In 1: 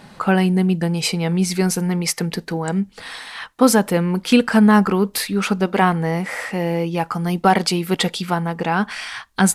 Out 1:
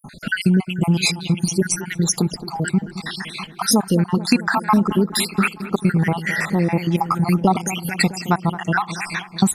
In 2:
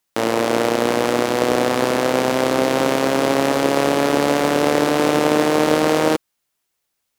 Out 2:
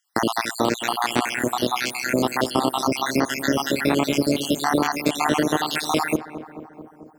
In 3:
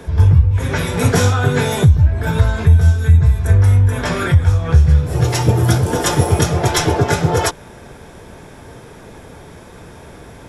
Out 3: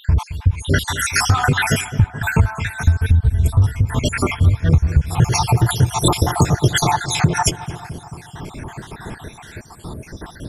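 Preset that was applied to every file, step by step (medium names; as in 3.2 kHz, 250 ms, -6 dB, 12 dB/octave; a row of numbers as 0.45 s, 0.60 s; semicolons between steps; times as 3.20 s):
random holes in the spectrogram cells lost 68%; peaking EQ 510 Hz -9.5 dB 0.59 oct; compression 6:1, threshold -20 dBFS; on a send: filtered feedback delay 219 ms, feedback 73%, low-pass 1.5 kHz, level -13 dB; on the sum: peak normalisation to -1.5 dBFS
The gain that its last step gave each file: +7.5 dB, +5.0 dB, +9.0 dB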